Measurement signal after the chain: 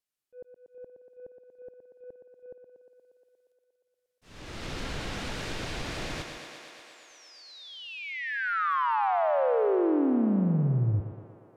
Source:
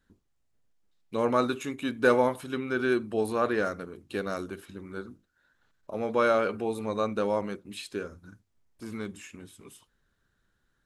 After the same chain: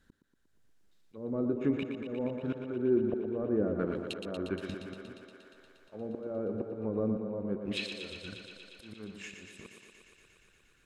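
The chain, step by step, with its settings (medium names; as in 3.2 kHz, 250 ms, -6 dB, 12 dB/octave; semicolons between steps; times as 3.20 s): waveshaping leveller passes 1; peaking EQ 950 Hz -3.5 dB 1 oct; in parallel at +1.5 dB: compression 10:1, threshold -36 dBFS; on the sum: low-pass that closes with the level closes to 390 Hz, closed at -21 dBFS; slow attack 561 ms; on a send: thinning echo 118 ms, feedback 82%, high-pass 180 Hz, level -7 dB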